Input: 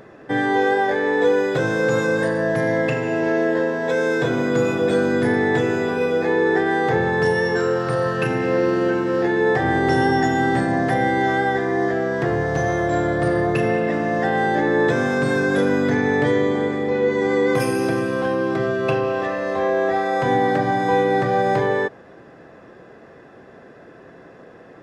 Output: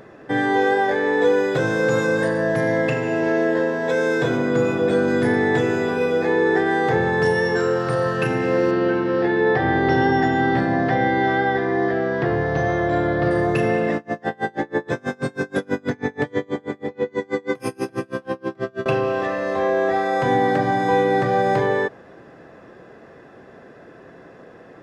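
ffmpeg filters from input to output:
-filter_complex "[0:a]asettb=1/sr,asplit=3[a][b][c];[a]atrim=end=4.374[d];[b]atrim=start=4.37:end=5.08,asetpts=PTS-STARTPTS,afade=t=in:d=0.004:c=qsin,afade=t=out:st=0.706:d=0.004:c=qsin,highshelf=f=3.6k:g=-6[e];[c]atrim=start=5.076[f];[d][e]acrossfade=d=0.004:c1=hsin:c2=qsin[g];[g][f]acrossfade=d=0.004:c1=qsin:c2=hsin,asettb=1/sr,asplit=3[h][i][j];[h]atrim=end=8.714[k];[i]atrim=start=8.71:end=13.31,asetpts=PTS-STARTPTS,afade=t=in:d=0.004:c=qsin,afade=t=out:st=4.596:d=0.004:c=qsin,lowpass=f=4.8k:w=0.5412,lowpass=f=4.8k:w=1.3066[l];[j]atrim=start=13.306[m];[k][l]acrossfade=d=0.004:c1=hsin:c2=qsin[n];[n][m]acrossfade=d=0.004:c1=qsin:c2=hsin,asettb=1/sr,asplit=3[o][p][q];[o]atrim=end=13.964[r];[p]atrim=start=13.96:end=18.86,asetpts=PTS-STARTPTS,afade=t=in:d=0.004:c=qsin,afade=t=out:st=4.896:d=0.004:c=qsin,aeval=exprs='val(0)*pow(10,-33*(0.5-0.5*cos(2*PI*6.2*n/s))/20)':c=same[s];[q]atrim=start=18.856[t];[r][s]acrossfade=d=0.004:c1=hsin:c2=qsin[u];[u][t]acrossfade=d=0.004:c1=qsin:c2=hsin"

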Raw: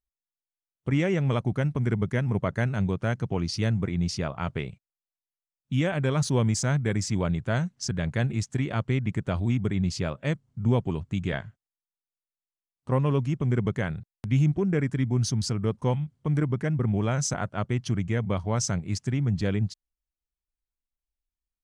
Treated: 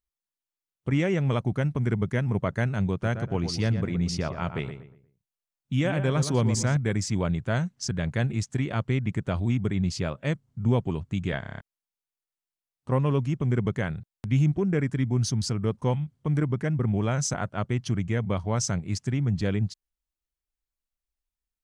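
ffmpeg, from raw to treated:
-filter_complex "[0:a]asettb=1/sr,asplit=3[a][b][c];[a]atrim=end=2.914[d];[b]atrim=start=2.91:end=6.77,asetpts=PTS-STARTPTS,afade=t=in:d=0.004:c=qsin,afade=t=out:st=3.856:d=0.004:c=qsin,asplit=2[e][f];[f]adelay=119,lowpass=f=2.1k:p=1,volume=-8.5dB,asplit=2[g][h];[h]adelay=119,lowpass=f=2.1k:p=1,volume=0.34,asplit=2[i][j];[j]adelay=119,lowpass=f=2.1k:p=1,volume=0.34,asplit=2[k][l];[l]adelay=119,lowpass=f=2.1k:p=1,volume=0.34[m];[e][g][i][k][m]amix=inputs=5:normalize=0,atrim=end_sample=170226[n];[c]atrim=start=6.766[o];[d][n]acrossfade=d=0.004:c1=hsin:c2=qsin[p];[p][o]acrossfade=d=0.004:c1=qsin:c2=hsin,asplit=8[q][r][s][t][u][v][w][x];[q]atrim=end=11.432[y];[r]atrim=start=11.398:end=11.432[z];[s]atrim=start=11.398:end=11.432[aa];[t]atrim=start=11.398:end=11.432[ab];[u]atrim=start=11.398:end=11.432[ac];[v]atrim=start=11.398:end=11.432[ad];[w]atrim=start=11.398:end=11.432[ae];[x]atrim=start=11.608[af];[y][z]acrossfade=d=0.004:c1=hsin:c2=hsin[ag];[ag][aa]acrossfade=d=0.004:c1=hsin:c2=hsin[ah];[ah][ab]acrossfade=d=0.004:c1=hsin:c2=hsin[ai];[ai][ac]acrossfade=d=0.004:c1=hsin:c2=hsin[aj];[aj][ad]acrossfade=d=0.004:c1=hsin:c2=hsin[ak];[ak][ae]acrossfade=d=0.004:c1=hsin:c2=hsin[al];[al][af]acrossfade=d=0.004:c1=hsin:c2=hsin"

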